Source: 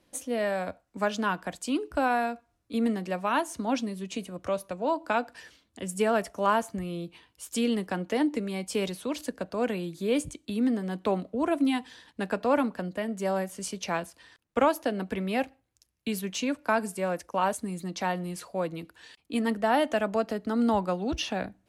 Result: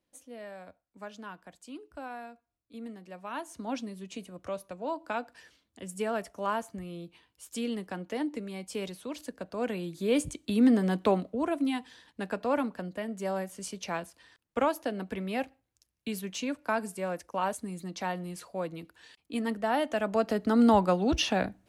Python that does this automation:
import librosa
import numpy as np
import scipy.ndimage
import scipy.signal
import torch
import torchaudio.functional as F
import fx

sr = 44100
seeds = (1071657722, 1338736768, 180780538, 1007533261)

y = fx.gain(x, sr, db=fx.line((3.03, -15.5), (3.67, -6.5), (9.28, -6.5), (10.85, 5.5), (11.53, -4.0), (19.91, -4.0), (20.4, 3.5)))